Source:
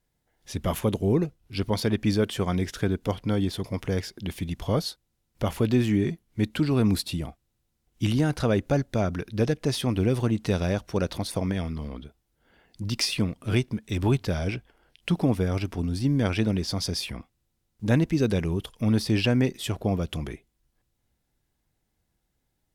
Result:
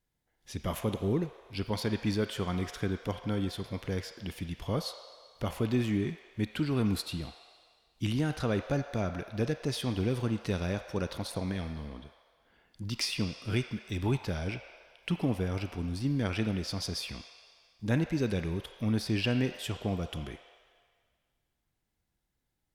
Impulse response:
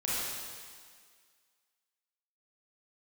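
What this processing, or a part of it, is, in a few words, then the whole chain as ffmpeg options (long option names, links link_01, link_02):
filtered reverb send: -filter_complex "[0:a]asplit=2[link_01][link_02];[link_02]highpass=frequency=590:width=0.5412,highpass=frequency=590:width=1.3066,lowpass=4900[link_03];[1:a]atrim=start_sample=2205[link_04];[link_03][link_04]afir=irnorm=-1:irlink=0,volume=-12.5dB[link_05];[link_01][link_05]amix=inputs=2:normalize=0,volume=-6.5dB"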